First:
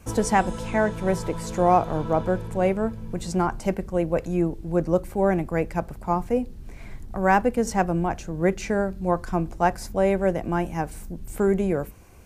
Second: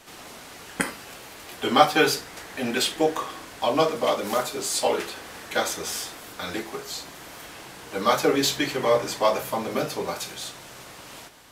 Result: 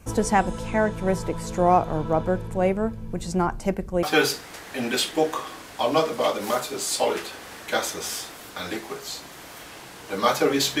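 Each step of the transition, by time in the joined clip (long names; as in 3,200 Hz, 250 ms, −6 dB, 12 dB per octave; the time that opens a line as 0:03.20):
first
0:04.03: continue with second from 0:01.86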